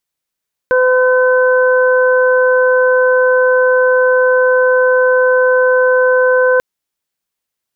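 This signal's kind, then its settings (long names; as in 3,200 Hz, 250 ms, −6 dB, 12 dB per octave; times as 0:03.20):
steady harmonic partials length 5.89 s, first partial 508 Hz, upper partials −10/−5.5 dB, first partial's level −9 dB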